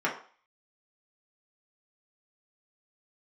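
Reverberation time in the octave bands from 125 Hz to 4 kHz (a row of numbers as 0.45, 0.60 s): 0.30, 0.35, 0.40, 0.45, 0.45, 0.45 s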